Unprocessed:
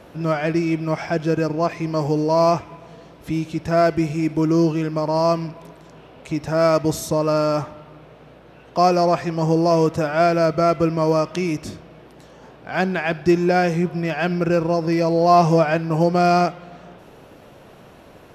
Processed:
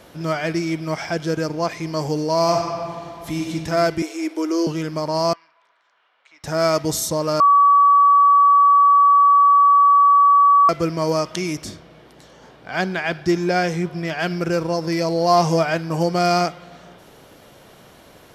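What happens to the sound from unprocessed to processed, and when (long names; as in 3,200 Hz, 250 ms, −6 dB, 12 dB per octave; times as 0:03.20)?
0:02.43–0:03.52: thrown reverb, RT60 2.3 s, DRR 1 dB
0:04.02–0:04.67: elliptic high-pass filter 310 Hz, stop band 50 dB
0:05.33–0:06.44: four-pole ladder band-pass 1,700 Hz, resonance 25%
0:07.40–0:10.69: beep over 1,140 Hz −8.5 dBFS
0:11.65–0:14.19: high-shelf EQ 7,600 Hz −7 dB
whole clip: high-shelf EQ 2,200 Hz +10.5 dB; notch filter 2,600 Hz, Q 11; level −3 dB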